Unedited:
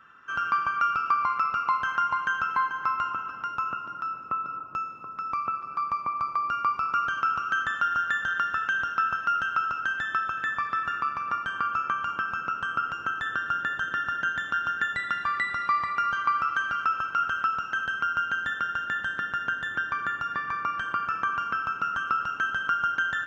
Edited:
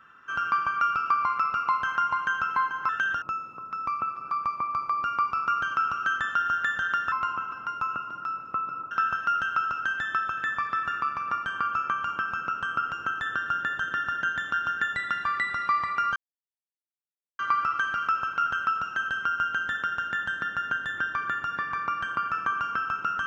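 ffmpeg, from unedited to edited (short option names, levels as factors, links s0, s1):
-filter_complex "[0:a]asplit=6[s0][s1][s2][s3][s4][s5];[s0]atrim=end=2.892[s6];[s1]atrim=start=8.578:end=8.912[s7];[s2]atrim=start=4.678:end=8.582[s8];[s3]atrim=start=2.888:end=4.682[s9];[s4]atrim=start=8.908:end=16.16,asetpts=PTS-STARTPTS,afade=t=out:st=7.248:d=0.004:c=hsin,apad=pad_dur=1.23[s10];[s5]atrim=start=16.16,asetpts=PTS-STARTPTS,afade=t=in:d=0.004:c=hsin[s11];[s6][s7]acrossfade=d=0.004:c1=hsin:c2=hsin[s12];[s12][s8]acrossfade=d=0.004:c1=hsin:c2=hsin[s13];[s13][s9]acrossfade=d=0.004:c1=hsin:c2=hsin[s14];[s10][s11]concat=n=2:v=0:a=1[s15];[s14][s15]acrossfade=d=0.004:c1=hsin:c2=hsin"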